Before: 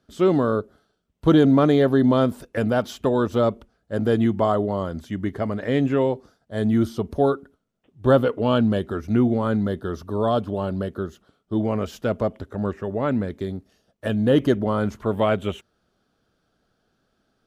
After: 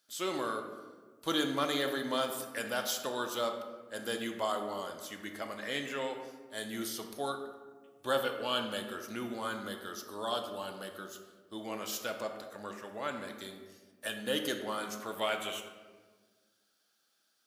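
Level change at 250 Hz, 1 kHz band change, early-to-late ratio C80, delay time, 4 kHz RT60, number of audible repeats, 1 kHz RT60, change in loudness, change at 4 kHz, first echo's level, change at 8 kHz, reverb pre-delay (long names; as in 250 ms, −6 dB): −19.0 dB, −9.0 dB, 8.5 dB, no echo audible, 0.80 s, no echo audible, 1.3 s, −14.0 dB, +1.0 dB, no echo audible, can't be measured, 3 ms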